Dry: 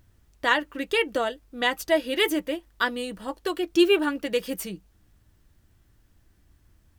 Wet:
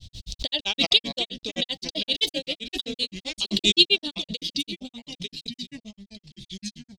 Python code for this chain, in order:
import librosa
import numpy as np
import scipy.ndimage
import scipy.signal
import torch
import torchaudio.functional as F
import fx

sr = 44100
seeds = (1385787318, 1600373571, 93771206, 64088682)

y = fx.high_shelf(x, sr, hz=4000.0, db=10.0)
y = fx.echo_pitch(y, sr, ms=86, semitones=-3, count=3, db_per_echo=-6.0)
y = fx.curve_eq(y, sr, hz=(180.0, 360.0, 640.0, 1400.0, 3800.0, 12000.0), db=(0, -11, -7, -27, 15, -20))
y = fx.granulator(y, sr, seeds[0], grain_ms=88.0, per_s=7.7, spray_ms=17.0, spread_st=0)
y = fx.pre_swell(y, sr, db_per_s=41.0)
y = y * 10.0 ** (2.0 / 20.0)